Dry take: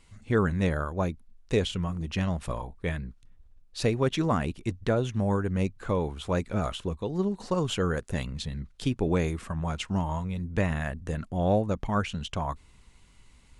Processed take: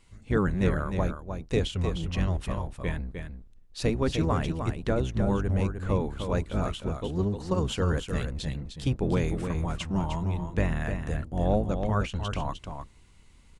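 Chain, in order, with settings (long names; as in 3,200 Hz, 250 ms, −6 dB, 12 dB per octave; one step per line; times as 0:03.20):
sub-octave generator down 1 octave, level 0 dB
single-tap delay 305 ms −7 dB
level −2 dB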